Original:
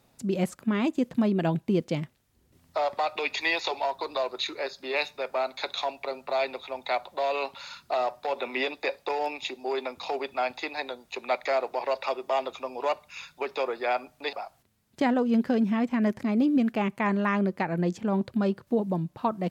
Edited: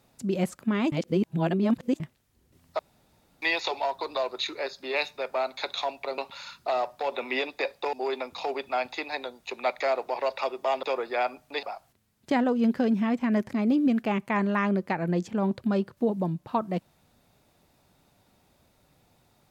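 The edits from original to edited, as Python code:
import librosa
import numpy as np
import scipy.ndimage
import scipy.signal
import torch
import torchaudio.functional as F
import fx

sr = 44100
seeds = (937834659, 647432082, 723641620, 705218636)

y = fx.edit(x, sr, fx.reverse_span(start_s=0.92, length_s=1.08),
    fx.room_tone_fill(start_s=2.79, length_s=0.63),
    fx.cut(start_s=6.18, length_s=1.24),
    fx.cut(start_s=9.17, length_s=0.41),
    fx.cut(start_s=12.48, length_s=1.05), tone=tone)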